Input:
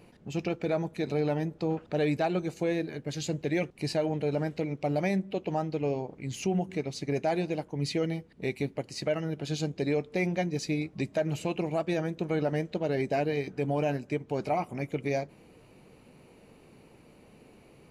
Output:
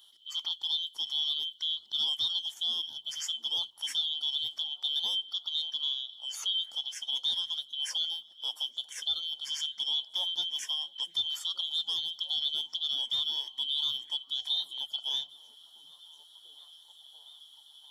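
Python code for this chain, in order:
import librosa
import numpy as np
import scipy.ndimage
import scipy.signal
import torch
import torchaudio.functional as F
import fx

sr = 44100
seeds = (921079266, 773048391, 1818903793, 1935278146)

y = fx.band_shuffle(x, sr, order='2413')
y = librosa.effects.preemphasis(y, coef=0.9, zi=[0.0])
y = fx.hum_notches(y, sr, base_hz=50, count=4)
y = fx.echo_stepped(y, sr, ms=691, hz=230.0, octaves=0.7, feedback_pct=70, wet_db=-8.0)
y = y * 10.0 ** (3.5 / 20.0)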